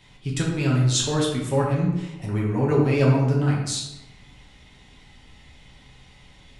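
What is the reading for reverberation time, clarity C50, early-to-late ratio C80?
1.0 s, 2.5 dB, 6.0 dB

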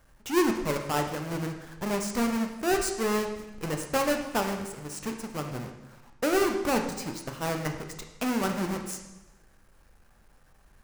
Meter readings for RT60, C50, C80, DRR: 1.0 s, 7.0 dB, 9.0 dB, 4.0 dB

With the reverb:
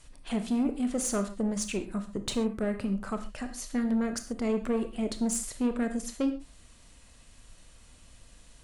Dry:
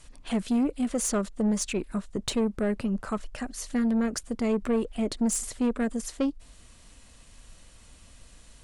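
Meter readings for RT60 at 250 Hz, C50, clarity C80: no reading, 10.5 dB, 14.5 dB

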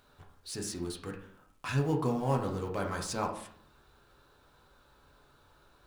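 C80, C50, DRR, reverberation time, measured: 12.0 dB, 8.0 dB, 0.5 dB, 0.60 s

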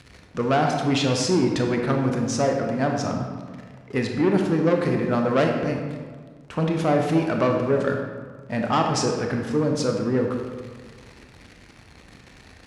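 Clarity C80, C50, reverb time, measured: 5.5 dB, 3.5 dB, 1.6 s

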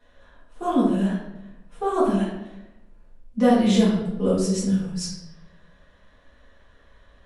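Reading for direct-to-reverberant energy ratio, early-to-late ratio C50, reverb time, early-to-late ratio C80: -10.5 dB, 1.5 dB, 0.90 s, 5.0 dB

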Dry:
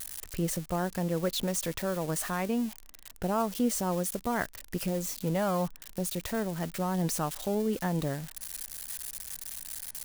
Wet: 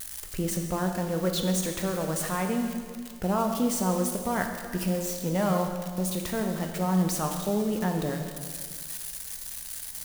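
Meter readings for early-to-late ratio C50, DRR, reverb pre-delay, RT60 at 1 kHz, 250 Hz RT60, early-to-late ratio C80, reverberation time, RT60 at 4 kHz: 5.5 dB, 3.5 dB, 4 ms, 1.9 s, 1.8 s, 6.5 dB, 1.9 s, 1.8 s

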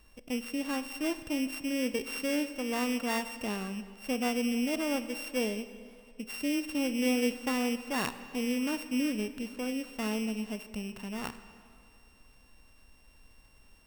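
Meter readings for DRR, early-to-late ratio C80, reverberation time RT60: 11.5 dB, 13.0 dB, 2.4 s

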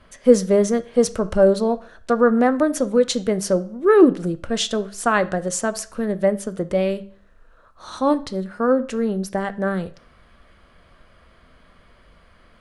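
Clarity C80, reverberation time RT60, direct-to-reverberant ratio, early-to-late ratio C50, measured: 22.5 dB, 0.45 s, 12.0 dB, 18.0 dB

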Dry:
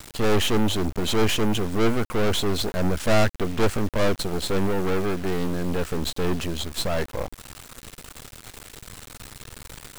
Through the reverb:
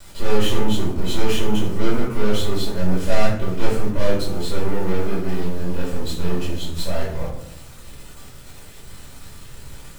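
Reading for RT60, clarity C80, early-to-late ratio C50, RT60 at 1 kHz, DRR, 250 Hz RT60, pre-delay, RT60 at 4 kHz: 0.75 s, 7.0 dB, 3.0 dB, 0.60 s, -8.5 dB, 1.1 s, 4 ms, 0.45 s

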